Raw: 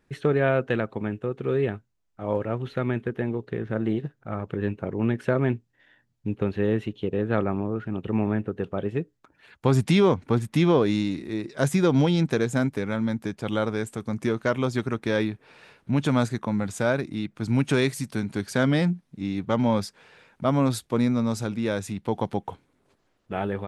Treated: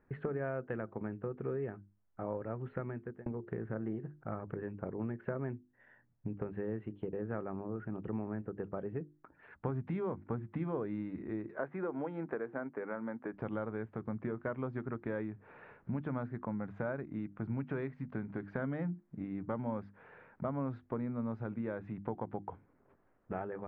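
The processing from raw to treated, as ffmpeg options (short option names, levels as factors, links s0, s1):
-filter_complex "[0:a]asettb=1/sr,asplit=3[s0][s1][s2];[s0]atrim=end=11.514[s3];[s1]atrim=start=11.51:end=13.34,asetpts=PTS-STARTPTS,afade=t=in:d=0.004:c=qsin,afade=t=out:st=1.826:d=0.004:c=qsin,highpass=360,lowpass=2200[s4];[s2]atrim=start=13.336[s5];[s3][s4]acrossfade=d=0.004:c1=hsin:c2=qsin[s6];[s6][s5]acrossfade=d=0.004:c1=qsin:c2=hsin,asplit=2[s7][s8];[s7]atrim=end=3.26,asetpts=PTS-STARTPTS,afade=t=out:st=2.75:d=0.51[s9];[s8]atrim=start=3.26,asetpts=PTS-STARTPTS,afade=t=in:d=0.004:c=hsin[s10];[s9][s10]concat=n=2:v=0:a=1,acompressor=threshold=0.0178:ratio=4,lowpass=f=1800:w=0.5412,lowpass=f=1800:w=1.3066,bandreject=f=50:t=h:w=6,bandreject=f=100:t=h:w=6,bandreject=f=150:t=h:w=6,bandreject=f=200:t=h:w=6,bandreject=f=250:t=h:w=6,bandreject=f=300:t=h:w=6,bandreject=f=350:t=h:w=6,volume=0.891"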